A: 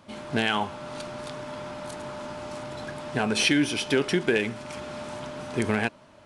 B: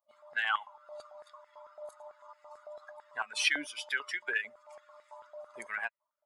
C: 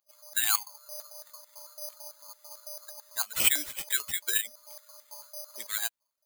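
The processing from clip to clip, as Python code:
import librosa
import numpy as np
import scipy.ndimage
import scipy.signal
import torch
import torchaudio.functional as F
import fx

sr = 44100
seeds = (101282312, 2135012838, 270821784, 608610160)

y1 = fx.bin_expand(x, sr, power=2.0)
y1 = fx.filter_held_highpass(y1, sr, hz=9.0, low_hz=700.0, high_hz=1900.0)
y1 = y1 * librosa.db_to_amplitude(-5.0)
y2 = (np.kron(y1[::8], np.eye(8)[0]) * 8)[:len(y1)]
y2 = y2 * librosa.db_to_amplitude(-4.5)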